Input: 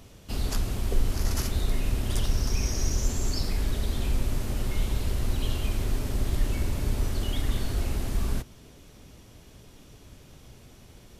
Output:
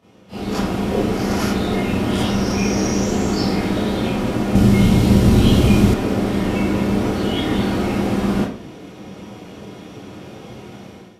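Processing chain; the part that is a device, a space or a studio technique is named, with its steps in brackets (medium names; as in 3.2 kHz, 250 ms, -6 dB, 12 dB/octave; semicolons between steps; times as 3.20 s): low-pass 1.9 kHz 6 dB/octave; far laptop microphone (reverberation RT60 0.50 s, pre-delay 23 ms, DRR -9.5 dB; high-pass 180 Hz 12 dB/octave; level rider gain up to 14 dB); 4.55–5.94 s: tone controls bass +12 dB, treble +8 dB; trim -5 dB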